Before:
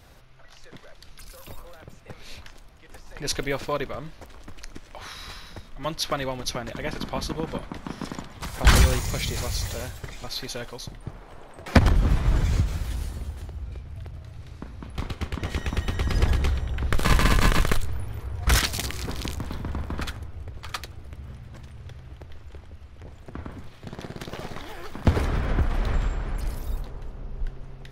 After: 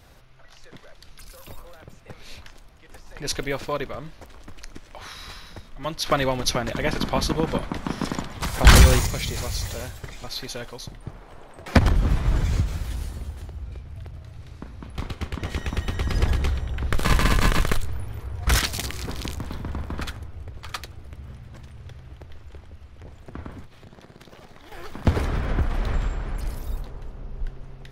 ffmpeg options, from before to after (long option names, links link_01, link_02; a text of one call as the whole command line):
ffmpeg -i in.wav -filter_complex "[0:a]asettb=1/sr,asplit=3[link_01][link_02][link_03];[link_01]atrim=end=6.064[link_04];[link_02]atrim=start=6.06:end=9.07,asetpts=PTS-STARTPTS,afade=type=in:duration=0.004:curve=qsin,afade=type=out:start_time=3.006:duration=0.004:curve=qsin,acontrast=63[link_05];[link_03]atrim=start=9.066[link_06];[link_04][link_05]acrossfade=duration=0.004:curve1=hsin:curve2=qsin[link_07];[link_07][link_06]acrossfade=duration=0.004:curve1=qsin:curve2=hsin,asettb=1/sr,asplit=3[link_08][link_09][link_10];[link_08]atrim=end=23.644[link_11];[link_09]atrim=start=23.64:end=24.72,asetpts=PTS-STARTPTS,afade=type=in:duration=0.004:curve=qsin,afade=type=out:start_time=1.076:duration=0.004:curve=qsin,acompressor=threshold=-41dB:ratio=10:attack=3.2:release=140:knee=1:detection=peak[link_12];[link_10]atrim=start=24.716[link_13];[link_11][link_12]acrossfade=duration=0.004:curve1=hsin:curve2=qsin[link_14];[link_14][link_13]acrossfade=duration=0.004:curve1=qsin:curve2=hsin" out.wav